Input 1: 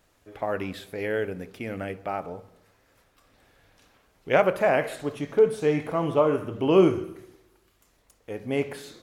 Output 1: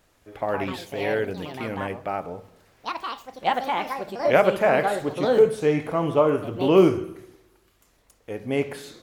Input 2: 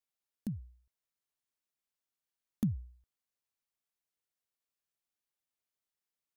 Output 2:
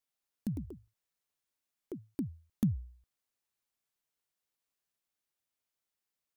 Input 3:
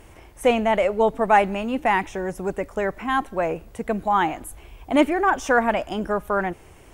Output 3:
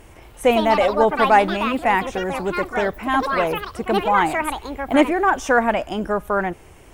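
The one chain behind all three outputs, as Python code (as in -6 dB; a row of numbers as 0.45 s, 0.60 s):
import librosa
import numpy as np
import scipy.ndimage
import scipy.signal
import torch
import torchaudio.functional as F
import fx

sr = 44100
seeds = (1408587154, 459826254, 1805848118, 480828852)

y = fx.echo_pitch(x, sr, ms=221, semitones=5, count=2, db_per_echo=-6.0)
y = y * 10.0 ** (2.0 / 20.0)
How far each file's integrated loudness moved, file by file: +2.0 LU, +0.5 LU, +3.0 LU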